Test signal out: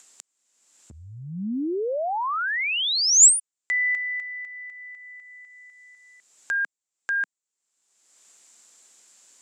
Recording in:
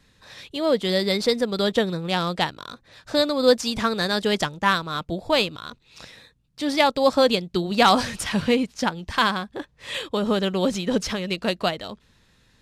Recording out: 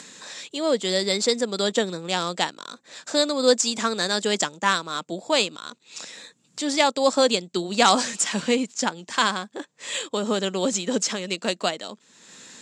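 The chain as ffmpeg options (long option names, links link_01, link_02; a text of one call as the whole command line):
ffmpeg -i in.wav -af "highpass=frequency=200:width=0.5412,highpass=frequency=200:width=1.3066,acompressor=mode=upward:threshold=-33dB:ratio=2.5,lowpass=frequency=7400:width_type=q:width=6.9,volume=-1.5dB" out.wav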